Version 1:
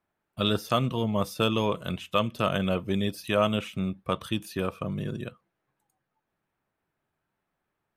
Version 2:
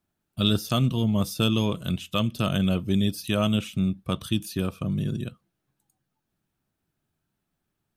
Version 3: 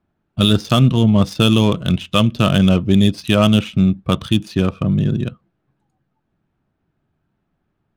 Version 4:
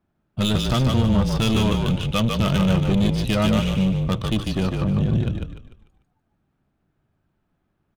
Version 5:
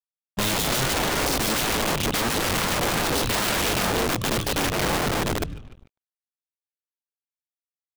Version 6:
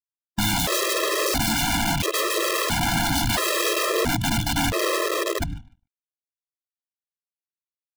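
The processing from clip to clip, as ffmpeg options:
ffmpeg -i in.wav -af "equalizer=frequency=500:width_type=o:width=1:gain=-9,equalizer=frequency=1000:width_type=o:width=1:gain=-9,equalizer=frequency=2000:width_type=o:width=1:gain=-9,volume=6.5dB" out.wav
ffmpeg -i in.wav -af "adynamicsmooth=sensitivity=7:basefreq=2300,alimiter=level_in=11.5dB:limit=-1dB:release=50:level=0:latency=1,volume=-1dB" out.wav
ffmpeg -i in.wav -filter_complex "[0:a]asoftclip=type=tanh:threshold=-13dB,asplit=2[link_01][link_02];[link_02]asplit=5[link_03][link_04][link_05][link_06][link_07];[link_03]adelay=148,afreqshift=-37,volume=-3.5dB[link_08];[link_04]adelay=296,afreqshift=-74,volume=-11.9dB[link_09];[link_05]adelay=444,afreqshift=-111,volume=-20.3dB[link_10];[link_06]adelay=592,afreqshift=-148,volume=-28.7dB[link_11];[link_07]adelay=740,afreqshift=-185,volume=-37.1dB[link_12];[link_08][link_09][link_10][link_11][link_12]amix=inputs=5:normalize=0[link_13];[link_01][link_13]amix=inputs=2:normalize=0,volume=-2.5dB" out.wav
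ffmpeg -i in.wav -af "aeval=exprs='(mod(10.6*val(0)+1,2)-1)/10.6':channel_layout=same,acrusher=bits=7:mix=0:aa=0.5,volume=1.5dB" out.wav
ffmpeg -i in.wav -af "agate=range=-33dB:threshold=-31dB:ratio=3:detection=peak,afftfilt=real='re*gt(sin(2*PI*0.74*pts/sr)*(1-2*mod(floor(b*sr/1024/340),2)),0)':imag='im*gt(sin(2*PI*0.74*pts/sr)*(1-2*mod(floor(b*sr/1024/340),2)),0)':win_size=1024:overlap=0.75,volume=4dB" out.wav

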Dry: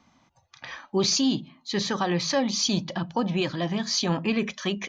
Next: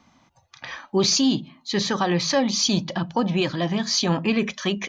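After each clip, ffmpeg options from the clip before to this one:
ffmpeg -i in.wav -af "acontrast=27,volume=-1.5dB" out.wav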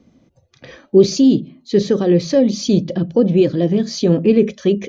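ffmpeg -i in.wav -af "lowshelf=frequency=650:width_type=q:width=3:gain=11.5,volume=-5dB" out.wav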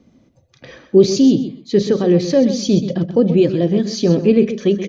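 ffmpeg -i in.wav -af "aecho=1:1:129|258:0.282|0.0507" out.wav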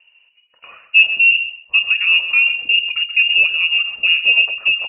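ffmpeg -i in.wav -af "lowpass=frequency=2600:width_type=q:width=0.5098,lowpass=frequency=2600:width_type=q:width=0.6013,lowpass=frequency=2600:width_type=q:width=0.9,lowpass=frequency=2600:width_type=q:width=2.563,afreqshift=-3000,volume=-1dB" out.wav

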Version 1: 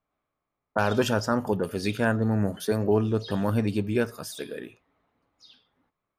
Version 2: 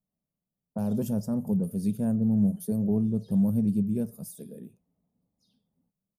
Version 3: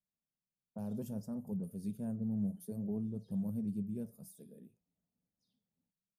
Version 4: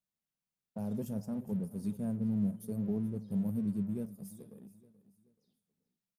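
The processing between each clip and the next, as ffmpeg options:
ffmpeg -i in.wav -af "firequalizer=gain_entry='entry(100,0);entry(190,13);entry(300,-6);entry(560,-5);entry(1400,-25);entry(10000,5)':delay=0.05:min_phase=1,volume=-5dB" out.wav
ffmpeg -i in.wav -af "flanger=delay=0.7:depth=9.4:regen=-79:speed=0.61:shape=triangular,volume=-8dB" out.wav
ffmpeg -i in.wav -filter_complex "[0:a]asplit=2[link_01][link_02];[link_02]aeval=exprs='sgn(val(0))*max(abs(val(0))-0.002,0)':channel_layout=same,volume=-4.5dB[link_03];[link_01][link_03]amix=inputs=2:normalize=0,aecho=1:1:430|860|1290:0.141|0.0523|0.0193" out.wav

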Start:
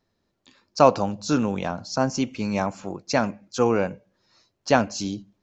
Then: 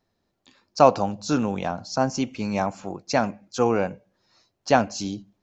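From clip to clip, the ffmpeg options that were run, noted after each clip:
ffmpeg -i in.wav -af "equalizer=frequency=750:width_type=o:width=0.33:gain=4.5,volume=-1dB" out.wav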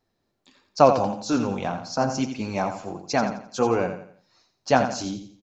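ffmpeg -i in.wav -filter_complex "[0:a]flanger=delay=2.4:depth=6.4:regen=-44:speed=1.6:shape=sinusoidal,asplit=2[link_01][link_02];[link_02]aecho=0:1:86|172|258|344:0.355|0.128|0.046|0.0166[link_03];[link_01][link_03]amix=inputs=2:normalize=0,volume=3dB" out.wav

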